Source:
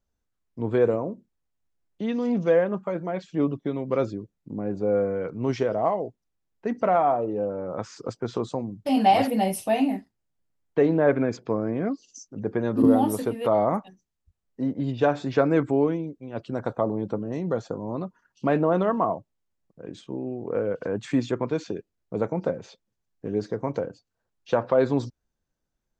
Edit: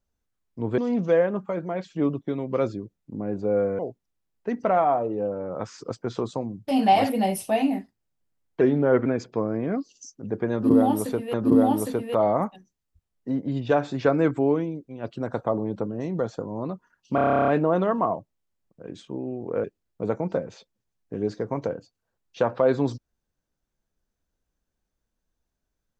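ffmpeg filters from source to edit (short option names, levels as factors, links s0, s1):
-filter_complex "[0:a]asplit=18[s0][s1][s2][s3][s4][s5][s6][s7][s8][s9][s10][s11][s12][s13][s14][s15][s16][s17];[s0]atrim=end=0.782[s18];[s1]atrim=start=2.158:end=5.172[s19];[s2]atrim=start=5.968:end=10.794[s20];[s3]atrim=start=10.79:end=11.19,asetpts=PTS-STARTPTS,asetrate=39249,aresample=44100,atrim=end_sample=19820,asetpts=PTS-STARTPTS[s21];[s4]atrim=start=11.186:end=13.472[s22];[s5]atrim=start=12.658:end=18.502[s23];[s6]atrim=start=18.468:end=18.502[s24];[s7]atrim=start=18.468:end=18.502[s25];[s8]atrim=start=18.468:end=18.502[s26];[s9]atrim=start=18.468:end=18.502[s27];[s10]atrim=start=18.468:end=18.502[s28];[s11]atrim=start=18.468:end=18.502[s29];[s12]atrim=start=18.468:end=18.502[s30];[s13]atrim=start=18.468:end=18.502[s31];[s14]atrim=start=18.468:end=18.502[s32];[s15]atrim=start=18.468:end=18.502[s33];[s16]atrim=start=18.468:end=20.632[s34];[s17]atrim=start=21.758[s35];[s18][s19]acrossfade=d=0.004:c1=hsin:c2=hsin[s36];[s36][s20]acrossfade=d=0.004:c1=hsin:c2=hsin[s37];[s37][s21]acrossfade=d=0.004:c1=hsin:c2=hsin[s38];[s38][s22]acrossfade=d=0.004:c1=hsin:c2=hsin[s39];[s39][s23]acrossfade=d=0.004:c1=hsin:c2=hsin[s40];[s40][s24]acrossfade=d=0.004:c1=hsin:c2=hsin[s41];[s41][s25]acrossfade=d=0.004:c1=hsin:c2=hsin[s42];[s42][s26]acrossfade=d=0.004:c1=hsin:c2=hsin[s43];[s43][s27]acrossfade=d=0.004:c1=hsin:c2=hsin[s44];[s44][s28]acrossfade=d=0.004:c1=hsin:c2=hsin[s45];[s45][s29]acrossfade=d=0.004:c1=hsin:c2=hsin[s46];[s46][s30]acrossfade=d=0.004:c1=hsin:c2=hsin[s47];[s47][s31]acrossfade=d=0.004:c1=hsin:c2=hsin[s48];[s48][s32]acrossfade=d=0.004:c1=hsin:c2=hsin[s49];[s49][s33]acrossfade=d=0.004:c1=hsin:c2=hsin[s50];[s50][s34]acrossfade=d=0.004:c1=hsin:c2=hsin[s51];[s51][s35]acrossfade=d=0.004:c1=hsin:c2=hsin"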